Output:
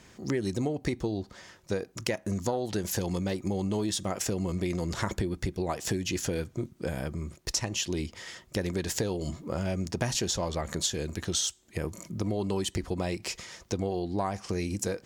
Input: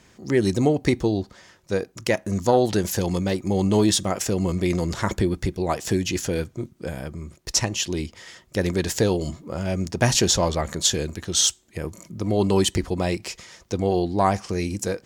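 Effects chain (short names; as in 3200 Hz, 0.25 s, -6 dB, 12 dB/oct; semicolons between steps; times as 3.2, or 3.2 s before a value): compressor, threshold -27 dBFS, peak gain reduction 13.5 dB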